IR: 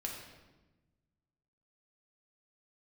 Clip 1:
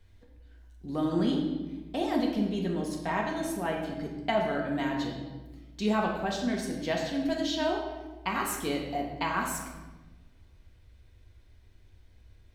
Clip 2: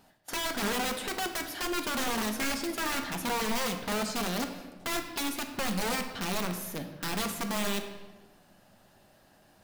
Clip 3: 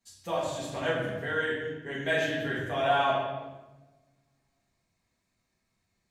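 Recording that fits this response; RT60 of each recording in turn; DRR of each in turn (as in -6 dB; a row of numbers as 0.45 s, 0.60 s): 1; 1.1 s, 1.2 s, 1.1 s; -1.5 dB, 4.5 dB, -9.0 dB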